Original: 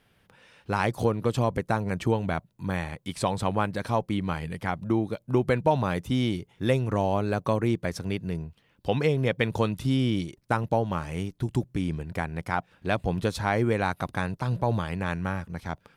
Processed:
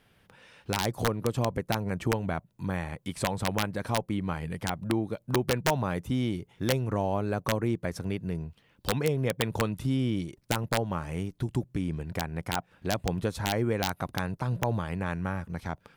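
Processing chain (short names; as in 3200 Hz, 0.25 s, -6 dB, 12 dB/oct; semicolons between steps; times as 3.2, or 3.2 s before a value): dynamic EQ 4100 Hz, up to -5 dB, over -49 dBFS, Q 0.8; in parallel at 0 dB: compressor 20:1, threshold -32 dBFS, peak gain reduction 16 dB; on the sum: wrapped overs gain 11.5 dB; gain -5 dB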